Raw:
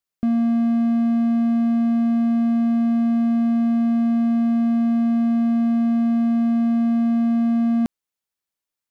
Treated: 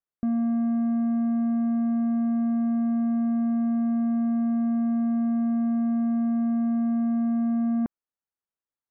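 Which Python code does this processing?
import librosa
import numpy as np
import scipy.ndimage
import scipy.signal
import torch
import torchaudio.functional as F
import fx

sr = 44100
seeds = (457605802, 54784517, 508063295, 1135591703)

y = scipy.signal.sosfilt(scipy.signal.butter(4, 1700.0, 'lowpass', fs=sr, output='sos'), x)
y = F.gain(torch.from_numpy(y), -5.5).numpy()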